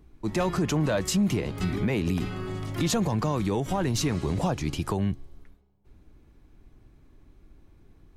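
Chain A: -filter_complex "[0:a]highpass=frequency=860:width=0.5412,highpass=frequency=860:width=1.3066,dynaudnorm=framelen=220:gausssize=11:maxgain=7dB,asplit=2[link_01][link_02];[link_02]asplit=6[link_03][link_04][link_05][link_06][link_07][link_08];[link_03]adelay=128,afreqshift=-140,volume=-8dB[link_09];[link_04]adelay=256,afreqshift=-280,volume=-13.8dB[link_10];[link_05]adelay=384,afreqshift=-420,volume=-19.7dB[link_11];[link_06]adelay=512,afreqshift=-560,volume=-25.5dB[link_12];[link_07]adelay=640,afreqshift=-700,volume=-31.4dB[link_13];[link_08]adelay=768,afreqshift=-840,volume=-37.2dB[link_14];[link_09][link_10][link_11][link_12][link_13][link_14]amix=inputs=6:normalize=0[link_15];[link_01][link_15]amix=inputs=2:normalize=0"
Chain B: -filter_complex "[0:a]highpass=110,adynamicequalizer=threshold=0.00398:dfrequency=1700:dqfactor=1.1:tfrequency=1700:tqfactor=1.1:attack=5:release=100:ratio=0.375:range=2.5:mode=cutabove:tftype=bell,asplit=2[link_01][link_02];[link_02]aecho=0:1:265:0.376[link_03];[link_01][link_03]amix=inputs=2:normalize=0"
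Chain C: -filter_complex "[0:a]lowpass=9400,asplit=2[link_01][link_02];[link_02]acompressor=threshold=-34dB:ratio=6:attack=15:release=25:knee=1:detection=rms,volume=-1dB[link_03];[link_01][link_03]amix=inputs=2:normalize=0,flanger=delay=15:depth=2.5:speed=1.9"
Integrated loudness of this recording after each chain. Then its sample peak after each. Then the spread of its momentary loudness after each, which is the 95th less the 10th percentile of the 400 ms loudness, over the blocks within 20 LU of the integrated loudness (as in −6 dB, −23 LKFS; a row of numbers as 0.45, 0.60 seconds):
−29.0, −28.0, −28.0 LKFS; −9.0, −14.5, −15.0 dBFS; 11, 7, 5 LU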